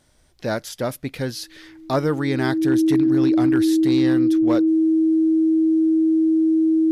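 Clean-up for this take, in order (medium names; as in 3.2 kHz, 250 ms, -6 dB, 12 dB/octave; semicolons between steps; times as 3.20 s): clip repair -11 dBFS; band-stop 320 Hz, Q 30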